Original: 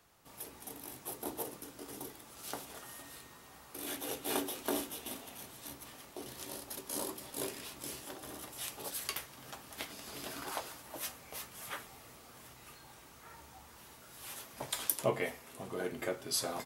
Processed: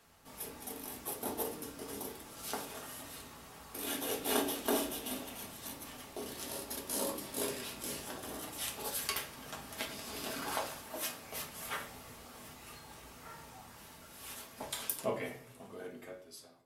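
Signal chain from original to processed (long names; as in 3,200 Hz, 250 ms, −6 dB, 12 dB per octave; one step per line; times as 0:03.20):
fade-out on the ending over 3.32 s
0:10.78–0:11.24: high-pass filter 100 Hz
on a send at −1 dB: convolution reverb RT60 0.50 s, pre-delay 4 ms
on the sum: level +1 dB
SBC 192 kbit/s 32,000 Hz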